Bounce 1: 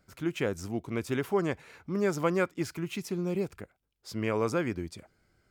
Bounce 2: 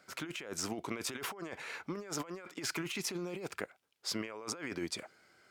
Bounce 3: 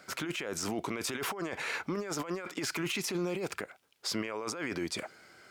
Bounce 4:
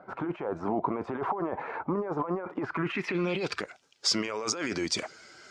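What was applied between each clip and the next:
weighting filter A; negative-ratio compressor -43 dBFS, ratio -1; gain +2 dB
limiter -33 dBFS, peak gain reduction 10.5 dB; gain +8.5 dB
bin magnitudes rounded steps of 15 dB; low-pass sweep 910 Hz -> 6300 Hz, 2.6–3.69; gain +4 dB

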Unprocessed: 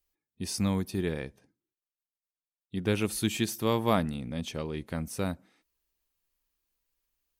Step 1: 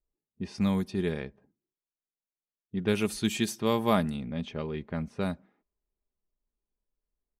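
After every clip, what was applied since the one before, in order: low-pass opened by the level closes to 610 Hz, open at -24.5 dBFS; comb 4.9 ms, depth 36%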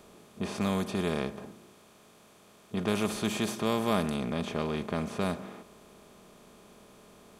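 per-bin compression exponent 0.4; gain -6 dB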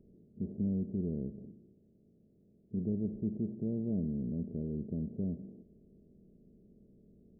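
Gaussian blur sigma 25 samples

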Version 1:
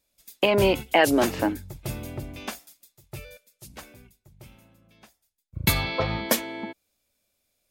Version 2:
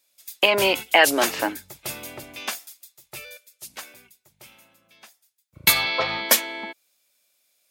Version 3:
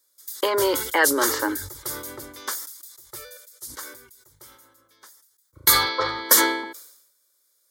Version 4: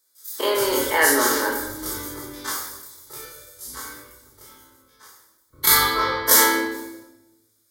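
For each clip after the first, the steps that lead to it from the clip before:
HPF 1300 Hz 6 dB/oct; gain +8 dB
fixed phaser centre 700 Hz, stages 6; sustainer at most 68 dB/s; gain +2.5 dB
spectral dilation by 60 ms; shoebox room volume 410 m³, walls mixed, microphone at 1.5 m; gain -5.5 dB

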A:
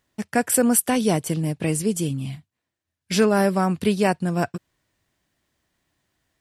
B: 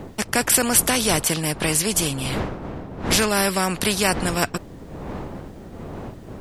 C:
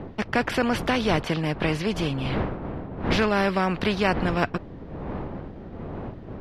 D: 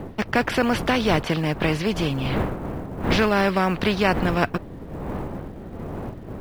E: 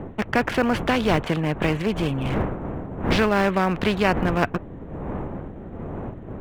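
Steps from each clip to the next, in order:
wind noise 240 Hz -35 dBFS; spectral compressor 2:1; gain +3.5 dB
air absorption 290 m
short-mantissa float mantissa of 4-bit; gain +2.5 dB
Wiener smoothing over 9 samples

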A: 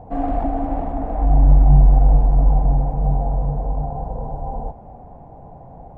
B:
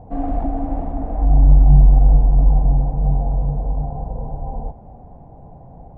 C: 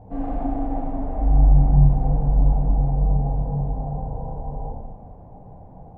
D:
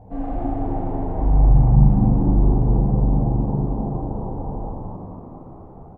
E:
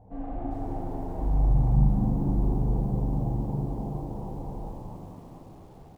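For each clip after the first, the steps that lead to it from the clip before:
low shelf 460 Hz +7.5 dB; gain -6 dB
plate-style reverb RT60 1.3 s, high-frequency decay 0.8×, DRR -3 dB; gain -6 dB
frequency-shifting echo 0.23 s, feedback 57%, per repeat +74 Hz, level -7 dB
lo-fi delay 0.4 s, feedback 55%, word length 7-bit, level -14.5 dB; gain -8.5 dB

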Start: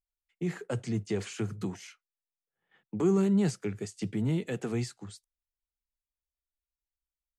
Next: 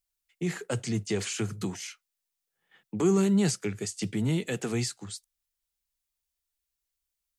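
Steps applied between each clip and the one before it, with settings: high shelf 2400 Hz +10 dB; gain +1.5 dB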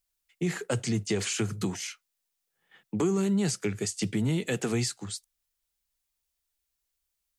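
compressor, threshold -26 dBFS, peak gain reduction 7 dB; gain +3 dB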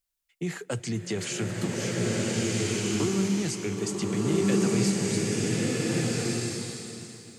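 bloom reverb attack 1.55 s, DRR -5.5 dB; gain -2.5 dB

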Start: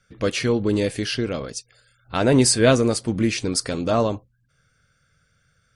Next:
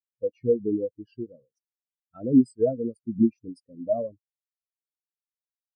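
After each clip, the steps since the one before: high shelf 8000 Hz +8.5 dB; compressor 8:1, threshold -18 dBFS, peak gain reduction 8 dB; spectral expander 4:1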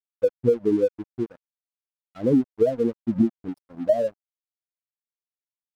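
dynamic EQ 620 Hz, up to +6 dB, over -33 dBFS, Q 0.85; compressor 12:1, threshold -23 dBFS, peak gain reduction 13.5 dB; crossover distortion -50 dBFS; gain +7.5 dB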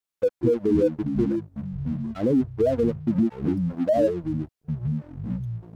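limiter -20 dBFS, peak gain reduction 11 dB; echoes that change speed 82 ms, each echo -7 st, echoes 3, each echo -6 dB; gain +6 dB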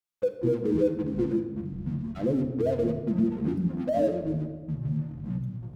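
shoebox room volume 1100 m³, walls mixed, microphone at 0.9 m; gain -5 dB

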